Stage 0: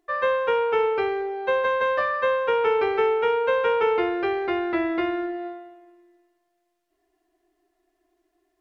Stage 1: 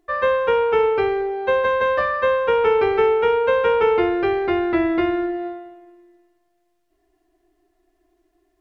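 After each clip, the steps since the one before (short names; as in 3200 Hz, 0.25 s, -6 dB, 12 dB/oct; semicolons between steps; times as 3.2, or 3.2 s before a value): low shelf 210 Hz +11.5 dB; gain +2.5 dB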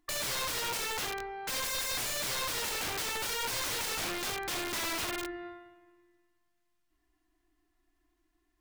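band shelf 500 Hz -15 dB 1.2 oct; wrapped overs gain 24.5 dB; gain -5 dB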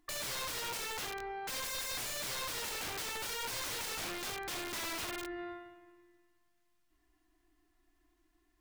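limiter -36.5 dBFS, peak gain reduction 7 dB; gain +2 dB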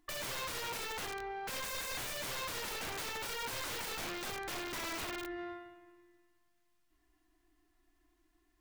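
tracing distortion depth 0.16 ms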